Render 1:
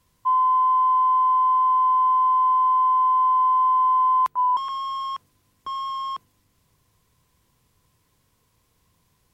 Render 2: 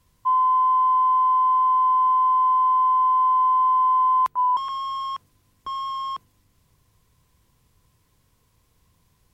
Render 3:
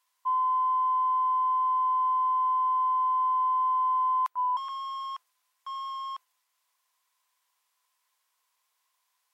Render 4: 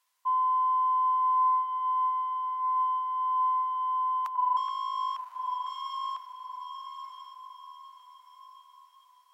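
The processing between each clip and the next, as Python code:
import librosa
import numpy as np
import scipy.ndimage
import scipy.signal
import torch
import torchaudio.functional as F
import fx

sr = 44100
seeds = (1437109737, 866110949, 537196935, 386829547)

y1 = fx.low_shelf(x, sr, hz=100.0, db=7.0)
y2 = scipy.signal.sosfilt(scipy.signal.butter(4, 790.0, 'highpass', fs=sr, output='sos'), y1)
y2 = F.gain(torch.from_numpy(y2), -6.5).numpy()
y3 = fx.echo_diffused(y2, sr, ms=1055, feedback_pct=43, wet_db=-6.0)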